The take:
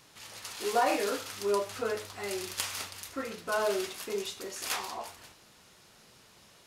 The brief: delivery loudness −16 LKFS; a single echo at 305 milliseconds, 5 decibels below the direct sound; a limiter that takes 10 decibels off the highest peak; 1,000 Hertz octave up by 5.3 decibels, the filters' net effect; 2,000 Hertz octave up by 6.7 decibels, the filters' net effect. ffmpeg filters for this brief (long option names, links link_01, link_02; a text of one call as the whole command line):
ffmpeg -i in.wav -af "equalizer=frequency=1000:width_type=o:gain=5.5,equalizer=frequency=2000:width_type=o:gain=7,alimiter=limit=-20.5dB:level=0:latency=1,aecho=1:1:305:0.562,volume=15.5dB" out.wav